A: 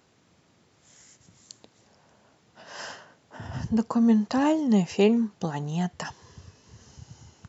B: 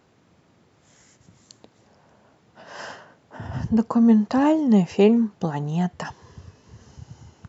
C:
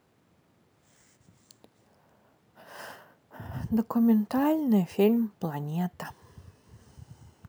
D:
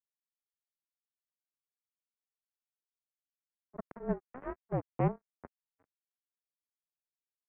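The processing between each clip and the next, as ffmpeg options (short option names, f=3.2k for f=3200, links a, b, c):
-af "highshelf=f=2.7k:g=-9,volume=4.5dB"
-af "acrusher=samples=3:mix=1:aa=0.000001,volume=-6.5dB"
-af "acrusher=bits=2:mix=0:aa=0.5,tiltshelf=f=970:g=6,highpass=f=410:t=q:w=0.5412,highpass=f=410:t=q:w=1.307,lowpass=f=2.3k:t=q:w=0.5176,lowpass=f=2.3k:t=q:w=0.7071,lowpass=f=2.3k:t=q:w=1.932,afreqshift=-260,volume=-5dB"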